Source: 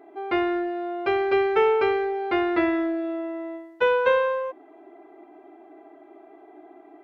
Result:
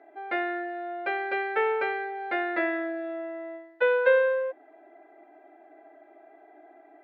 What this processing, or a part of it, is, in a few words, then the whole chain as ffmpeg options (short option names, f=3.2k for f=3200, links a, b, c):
phone earpiece: -af "highpass=360,equalizer=f=390:t=q:w=4:g=-8,equalizer=f=560:t=q:w=4:g=7,equalizer=f=1.1k:t=q:w=4:g=-10,equalizer=f=1.7k:t=q:w=4:g=8,equalizer=f=3k:t=q:w=4:g=-6,lowpass=f=4k:w=0.5412,lowpass=f=4k:w=1.3066,volume=-2.5dB"